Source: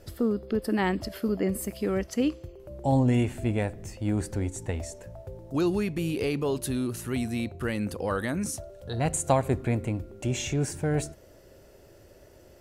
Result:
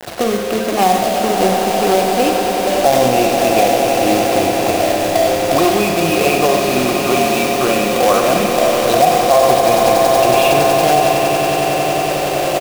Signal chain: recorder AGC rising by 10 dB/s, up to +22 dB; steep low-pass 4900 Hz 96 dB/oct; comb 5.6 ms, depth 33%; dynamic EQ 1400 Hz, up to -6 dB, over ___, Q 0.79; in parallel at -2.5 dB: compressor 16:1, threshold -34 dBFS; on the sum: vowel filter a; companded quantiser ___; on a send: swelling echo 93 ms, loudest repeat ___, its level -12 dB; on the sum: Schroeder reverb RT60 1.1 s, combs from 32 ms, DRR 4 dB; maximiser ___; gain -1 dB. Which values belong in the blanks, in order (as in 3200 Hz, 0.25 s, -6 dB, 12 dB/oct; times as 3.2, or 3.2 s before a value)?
-44 dBFS, 4-bit, 8, +27 dB